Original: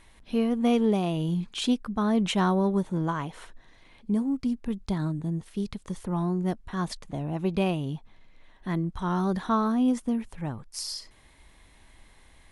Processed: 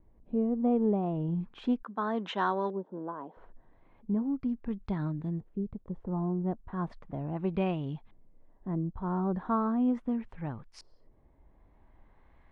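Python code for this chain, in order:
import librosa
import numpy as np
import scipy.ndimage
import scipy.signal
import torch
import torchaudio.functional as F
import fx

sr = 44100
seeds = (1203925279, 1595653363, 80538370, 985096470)

y = fx.filter_lfo_lowpass(x, sr, shape='saw_up', hz=0.37, low_hz=450.0, high_hz=2900.0, q=0.89)
y = fx.wow_flutter(y, sr, seeds[0], rate_hz=2.1, depth_cents=28.0)
y = fx.cabinet(y, sr, low_hz=260.0, low_slope=24, high_hz=7800.0, hz=(330.0, 1000.0, 1600.0, 2300.0, 3600.0, 6600.0), db=(-4, 4, 4, -7, 5, 5), at=(1.83, 3.37))
y = y * librosa.db_to_amplitude(-4.0)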